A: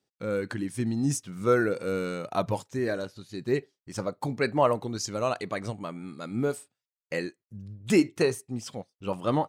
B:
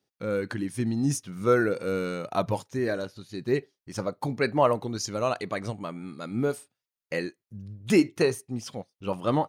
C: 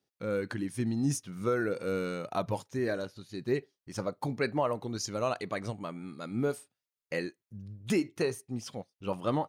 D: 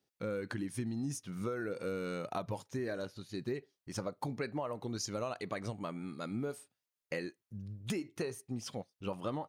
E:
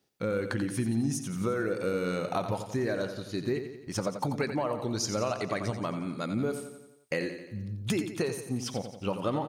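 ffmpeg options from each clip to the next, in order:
ffmpeg -i in.wav -af "bandreject=frequency=7700:width=6.8,volume=1dB" out.wav
ffmpeg -i in.wav -af "alimiter=limit=-15dB:level=0:latency=1:release=285,volume=-3.5dB" out.wav
ffmpeg -i in.wav -af "acompressor=threshold=-34dB:ratio=6" out.wav
ffmpeg -i in.wav -af "aecho=1:1:88|176|264|352|440|528:0.355|0.195|0.107|0.059|0.0325|0.0179,volume=7dB" out.wav

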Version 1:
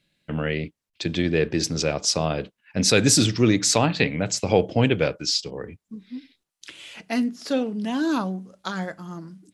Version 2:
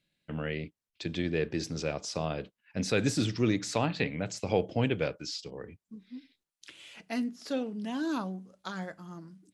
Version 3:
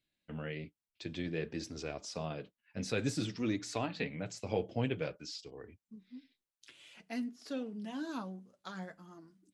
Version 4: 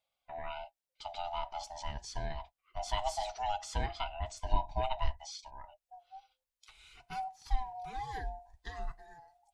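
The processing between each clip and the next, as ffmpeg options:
ffmpeg -i in.wav -filter_complex "[0:a]acrossover=split=2800[link_01][link_02];[link_02]acompressor=threshold=-27dB:ratio=4:attack=1:release=60[link_03];[link_01][link_03]amix=inputs=2:normalize=0,volume=-8.5dB" out.wav
ffmpeg -i in.wav -af "flanger=delay=2.7:depth=6.2:regen=-39:speed=0.54:shape=sinusoidal,volume=-3dB" out.wav
ffmpeg -i in.wav -af "afftfilt=real='real(if(lt(b,1008),b+24*(1-2*mod(floor(b/24),2)),b),0)':imag='imag(if(lt(b,1008),b+24*(1-2*mod(floor(b/24),2)),b),0)':win_size=2048:overlap=0.75,asubboost=boost=10:cutoff=58,volume=-1dB" out.wav

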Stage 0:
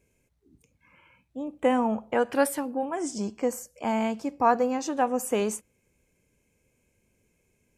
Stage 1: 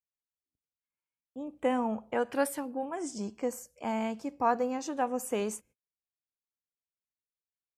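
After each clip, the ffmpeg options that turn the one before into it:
ffmpeg -i in.wav -af "agate=range=-37dB:threshold=-52dB:ratio=16:detection=peak,volume=-5.5dB" out.wav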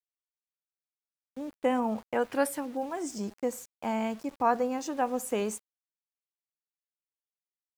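ffmpeg -i in.wav -af "agate=range=-11dB:threshold=-46dB:ratio=16:detection=peak,aeval=exprs='val(0)*gte(abs(val(0)),0.00376)':channel_layout=same,volume=1.5dB" out.wav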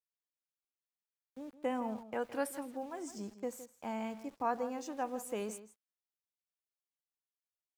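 ffmpeg -i in.wav -filter_complex "[0:a]asplit=2[link_01][link_02];[link_02]adelay=163.3,volume=-14dB,highshelf=frequency=4000:gain=-3.67[link_03];[link_01][link_03]amix=inputs=2:normalize=0,volume=-8.5dB" out.wav

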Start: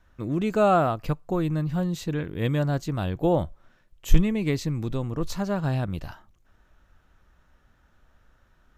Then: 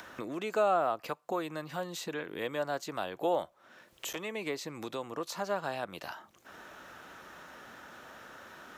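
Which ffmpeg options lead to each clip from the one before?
ffmpeg -i in.wav -filter_complex "[0:a]acrossover=split=490|1300[link_01][link_02][link_03];[link_01]acompressor=threshold=-38dB:ratio=4[link_04];[link_02]acompressor=threshold=-26dB:ratio=4[link_05];[link_03]acompressor=threshold=-40dB:ratio=4[link_06];[link_04][link_05][link_06]amix=inputs=3:normalize=0,highpass=300,acompressor=mode=upward:threshold=-34dB:ratio=2.5" out.wav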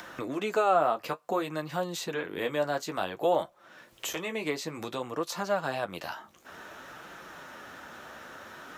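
ffmpeg -i in.wav -af "flanger=delay=5.7:depth=7.7:regen=-38:speed=0.56:shape=sinusoidal,volume=8dB" out.wav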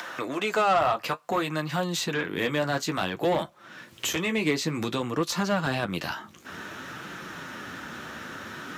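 ffmpeg -i in.wav -filter_complex "[0:a]asplit=2[link_01][link_02];[link_02]highpass=frequency=720:poles=1,volume=14dB,asoftclip=type=tanh:threshold=-13.5dB[link_03];[link_01][link_03]amix=inputs=2:normalize=0,lowpass=frequency=7100:poles=1,volume=-6dB,highpass=86,asubboost=boost=10:cutoff=210" out.wav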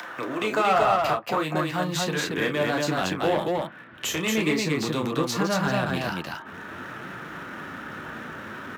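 ffmpeg -i in.wav -filter_complex "[0:a]acrossover=split=600|2800[link_01][link_02][link_03];[link_03]aeval=exprs='sgn(val(0))*max(abs(val(0))-0.00316,0)':channel_layout=same[link_04];[link_01][link_02][link_04]amix=inputs=3:normalize=0,aecho=1:1:32.07|230.3:0.447|0.794" out.wav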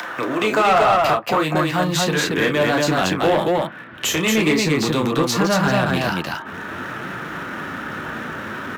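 ffmpeg -i in.wav -af "asoftclip=type=tanh:threshold=-17dB,volume=8dB" out.wav

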